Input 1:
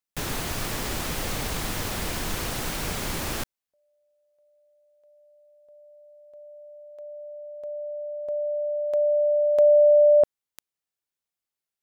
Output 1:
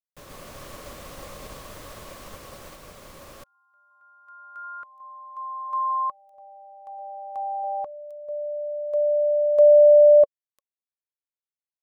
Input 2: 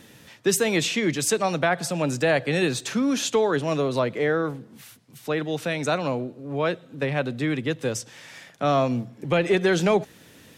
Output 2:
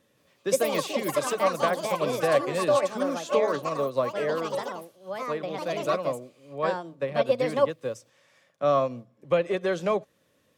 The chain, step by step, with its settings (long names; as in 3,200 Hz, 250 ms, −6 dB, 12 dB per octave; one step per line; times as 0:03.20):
delay with pitch and tempo change per echo 176 ms, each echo +5 semitones, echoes 3
hollow resonant body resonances 560/1,100 Hz, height 12 dB, ringing for 30 ms
expander for the loud parts 1.5 to 1, over −35 dBFS
level −6.5 dB